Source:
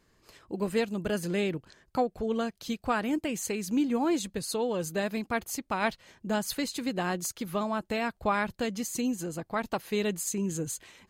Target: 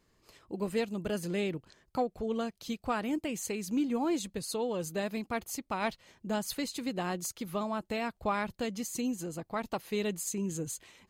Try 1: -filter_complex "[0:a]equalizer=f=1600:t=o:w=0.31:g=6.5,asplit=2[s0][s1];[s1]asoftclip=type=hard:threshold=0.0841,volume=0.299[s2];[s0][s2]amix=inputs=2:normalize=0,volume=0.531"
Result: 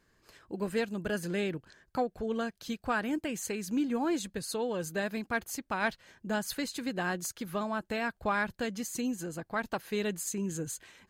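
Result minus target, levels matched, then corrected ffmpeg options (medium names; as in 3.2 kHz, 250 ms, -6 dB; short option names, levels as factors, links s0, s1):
2 kHz band +5.5 dB
-filter_complex "[0:a]equalizer=f=1600:t=o:w=0.31:g=-4,asplit=2[s0][s1];[s1]asoftclip=type=hard:threshold=0.0841,volume=0.299[s2];[s0][s2]amix=inputs=2:normalize=0,volume=0.531"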